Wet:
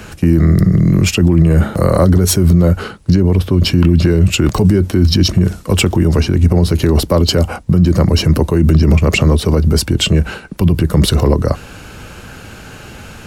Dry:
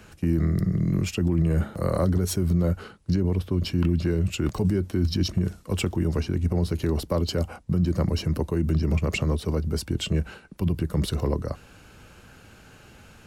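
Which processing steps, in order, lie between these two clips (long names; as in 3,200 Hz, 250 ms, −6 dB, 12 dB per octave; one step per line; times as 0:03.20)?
boost into a limiter +17.5 dB
level −1 dB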